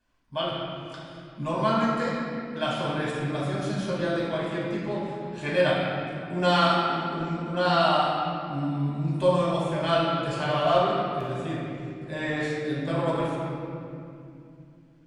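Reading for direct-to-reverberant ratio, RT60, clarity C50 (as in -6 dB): -7.0 dB, 2.6 s, -1.5 dB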